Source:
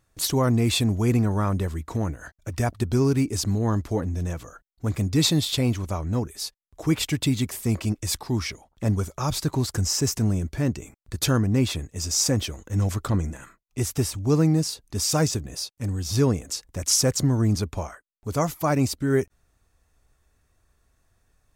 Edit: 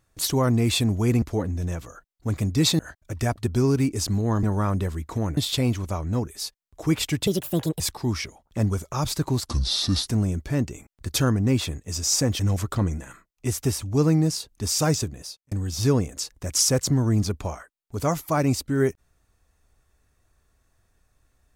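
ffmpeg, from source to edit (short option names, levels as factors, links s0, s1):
-filter_complex "[0:a]asplit=11[s0][s1][s2][s3][s4][s5][s6][s7][s8][s9][s10];[s0]atrim=end=1.222[s11];[s1]atrim=start=3.798:end=5.372[s12];[s2]atrim=start=2.158:end=3.802[s13];[s3]atrim=start=1.218:end=2.162[s14];[s4]atrim=start=5.368:end=7.274[s15];[s5]atrim=start=7.27:end=8.06,asetpts=PTS-STARTPTS,asetrate=65709,aresample=44100[s16];[s6]atrim=start=8.056:end=9.724[s17];[s7]atrim=start=9.72:end=10.15,asetpts=PTS-STARTPTS,asetrate=30870,aresample=44100[s18];[s8]atrim=start=10.146:end=12.472[s19];[s9]atrim=start=12.718:end=15.84,asetpts=PTS-STARTPTS,afade=t=out:st=2.642:d=0.48[s20];[s10]atrim=start=15.84,asetpts=PTS-STARTPTS,afade=t=in:d=0.004:c=hsin[s21];[s11][s12]acrossfade=d=0.004:c1=hsin:c2=hsin[s22];[s22][s13]acrossfade=d=0.004:c1=hsin:c2=hsin[s23];[s23][s14]acrossfade=d=0.004:c1=hsin:c2=hsin[s24];[s24][s15]acrossfade=d=0.004:c1=hsin:c2=hsin[s25];[s25][s16]acrossfade=d=0.004:c1=hsin:c2=hsin[s26];[s26][s17]acrossfade=d=0.004:c1=hsin:c2=hsin[s27];[s27][s18]acrossfade=d=0.004:c1=hsin:c2=hsin[s28];[s28][s19]acrossfade=d=0.004:c1=hsin:c2=hsin[s29];[s20][s21]concat=n=2:v=0:a=1[s30];[s29][s30]acrossfade=d=0.004:c1=hsin:c2=hsin"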